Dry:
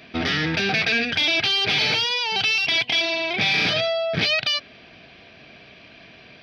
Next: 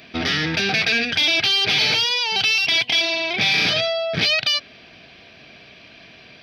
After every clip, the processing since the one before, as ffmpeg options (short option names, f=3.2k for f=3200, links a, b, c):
-af "highshelf=f=4.9k:g=9"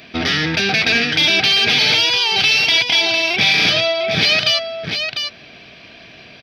-af "aecho=1:1:700:0.473,volume=3.5dB"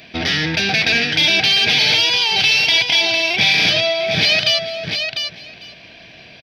-af "equalizer=f=250:t=o:w=0.33:g=-4,equalizer=f=400:t=o:w=0.33:g=-4,equalizer=f=1.25k:t=o:w=0.33:g=-8,aecho=1:1:447:0.15"